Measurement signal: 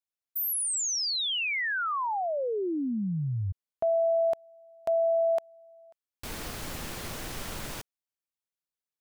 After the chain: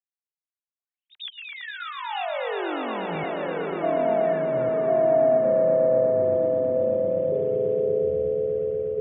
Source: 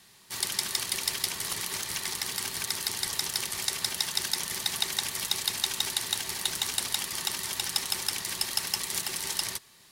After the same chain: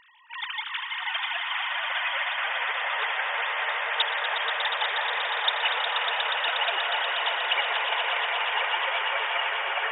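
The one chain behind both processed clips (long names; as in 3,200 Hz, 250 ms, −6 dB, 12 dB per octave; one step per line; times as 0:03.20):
three sine waves on the formant tracks
delay with pitch and tempo change per echo 612 ms, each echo −4 semitones, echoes 3
echo that builds up and dies away 120 ms, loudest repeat 5, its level −8.5 dB
level −1.5 dB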